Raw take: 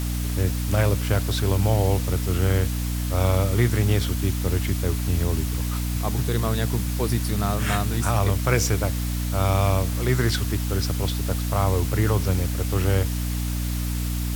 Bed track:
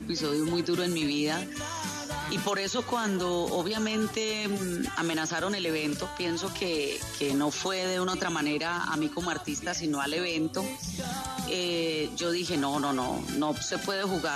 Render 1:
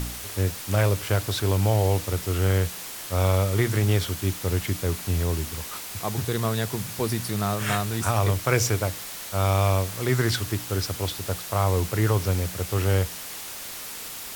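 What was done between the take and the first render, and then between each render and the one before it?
hum removal 60 Hz, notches 5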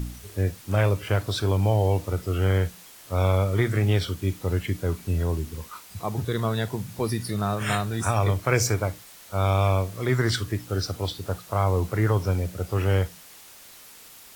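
noise reduction from a noise print 11 dB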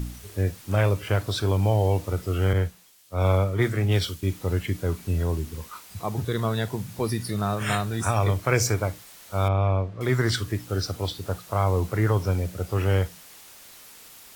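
0:02.53–0:04.23: multiband upward and downward expander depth 100%
0:09.48–0:10.01: head-to-tape spacing loss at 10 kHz 32 dB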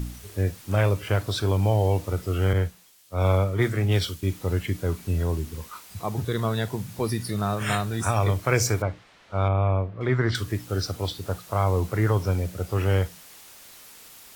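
0:08.82–0:10.35: low-pass filter 2,900 Hz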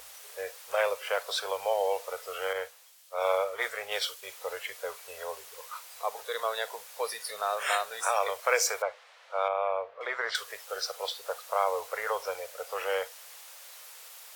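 elliptic high-pass filter 490 Hz, stop band 40 dB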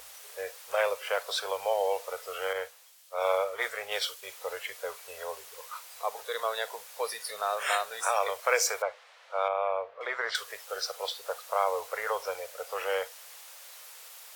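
no processing that can be heard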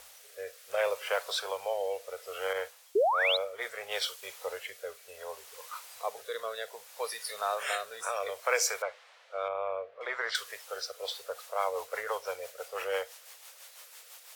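0:02.95–0:03.37: sound drawn into the spectrogram rise 370–4,200 Hz −22 dBFS
rotating-speaker cabinet horn 0.65 Hz, later 6 Hz, at 0:10.73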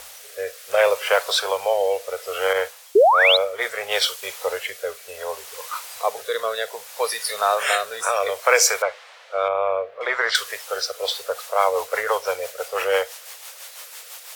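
level +12 dB
brickwall limiter −1 dBFS, peak gain reduction 1 dB

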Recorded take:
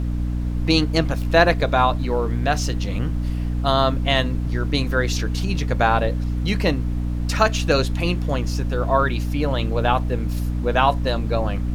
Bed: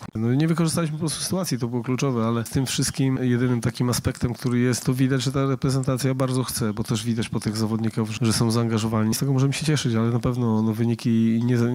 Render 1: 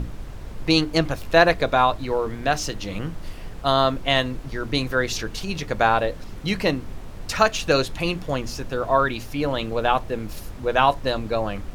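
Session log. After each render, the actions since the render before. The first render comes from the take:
mains-hum notches 60/120/180/240/300 Hz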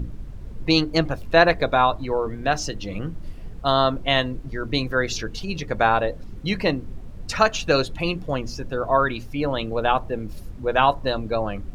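broadband denoise 11 dB, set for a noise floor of −36 dBFS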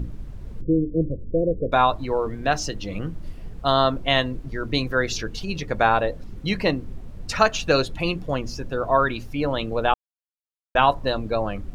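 0:00.61–0:01.72: Butterworth low-pass 540 Hz 72 dB per octave
0:09.94–0:10.75: silence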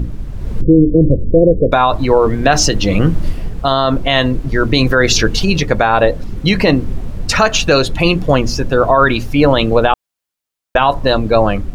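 automatic gain control gain up to 9.5 dB
boost into a limiter +10 dB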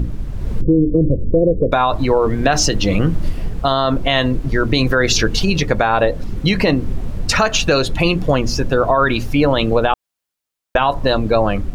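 downward compressor 2 to 1, threshold −13 dBFS, peak gain reduction 5 dB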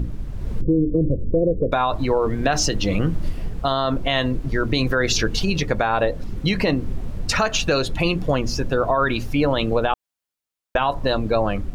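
level −5 dB

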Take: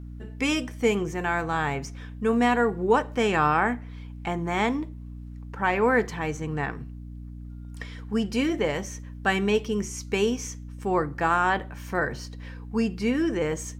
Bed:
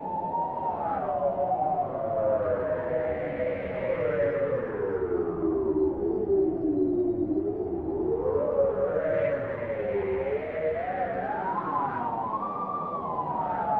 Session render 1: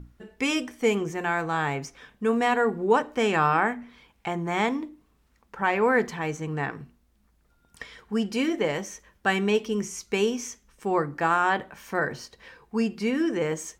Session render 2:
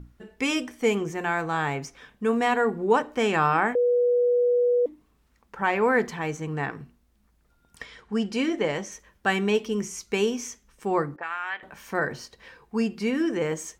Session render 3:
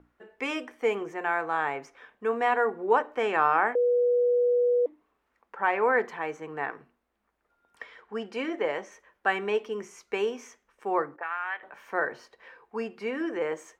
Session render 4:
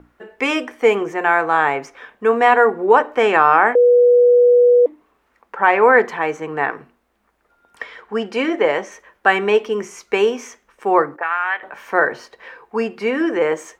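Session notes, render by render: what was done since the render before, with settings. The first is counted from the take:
mains-hum notches 60/120/180/240/300 Hz
0:03.75–0:04.86: beep over 487 Hz −18 dBFS; 0:07.85–0:08.92: low-pass filter 8,700 Hz; 0:11.16–0:11.63: envelope filter 420–2,200 Hz, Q 2.3, up, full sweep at −23.5 dBFS
three-way crossover with the lows and the highs turned down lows −21 dB, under 350 Hz, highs −15 dB, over 2,500 Hz
level +12 dB; brickwall limiter −1 dBFS, peak gain reduction 3 dB

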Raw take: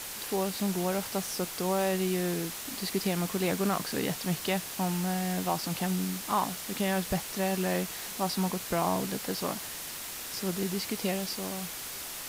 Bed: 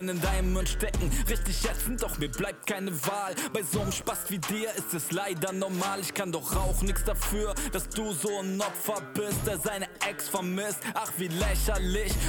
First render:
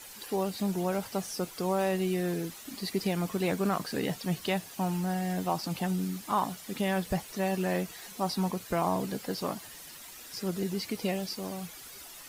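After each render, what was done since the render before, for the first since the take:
broadband denoise 11 dB, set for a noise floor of −40 dBFS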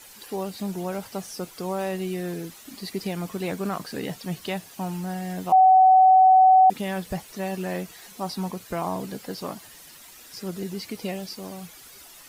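0:05.52–0:06.70: beep over 753 Hz −11 dBFS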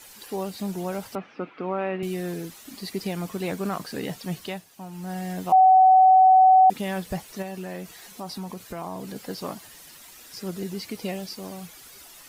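0:01.15–0:02.03: loudspeaker in its box 180–2,700 Hz, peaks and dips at 280 Hz +8 dB, 1,300 Hz +6 dB, 2,400 Hz +6 dB
0:04.37–0:05.19: duck −9 dB, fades 0.28 s
0:07.42–0:09.16: downward compressor 2.5 to 1, threshold −32 dBFS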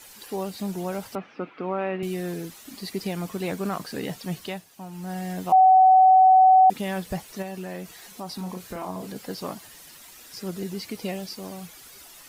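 0:08.35–0:09.07: double-tracking delay 33 ms −5 dB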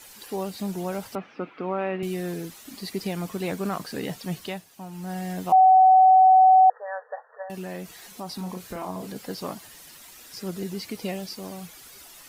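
0:05.91–0:07.50: linear-phase brick-wall band-pass 430–1,900 Hz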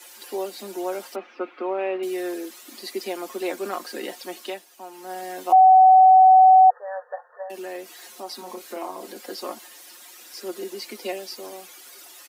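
Butterworth high-pass 240 Hz 72 dB per octave
comb filter 5.6 ms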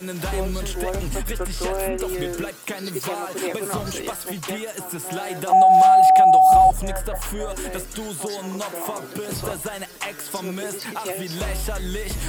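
mix in bed +0.5 dB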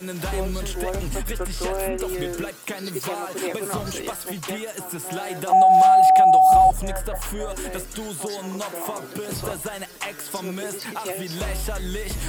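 level −1 dB

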